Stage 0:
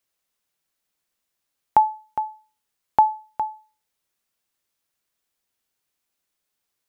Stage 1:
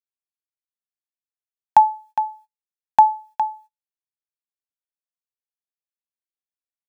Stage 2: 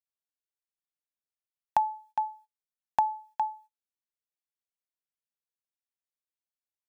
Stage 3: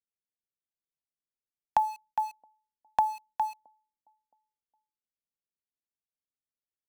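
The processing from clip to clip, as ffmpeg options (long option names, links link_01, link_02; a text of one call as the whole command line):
ffmpeg -i in.wav -af "agate=range=-29dB:threshold=-48dB:ratio=16:detection=peak,equalizer=frequency=79:width=1.4:gain=-14.5,aecho=1:1:1.2:0.82,volume=-1dB" out.wav
ffmpeg -i in.wav -af "acompressor=threshold=-14dB:ratio=6,volume=-7dB" out.wav
ffmpeg -i in.wav -filter_complex "[0:a]acrossover=split=250|570[link_01][link_02][link_03];[link_02]aecho=1:1:670|1340:0.0794|0.0222[link_04];[link_03]aeval=exprs='val(0)*gte(abs(val(0)),0.00708)':channel_layout=same[link_05];[link_01][link_04][link_05]amix=inputs=3:normalize=0" out.wav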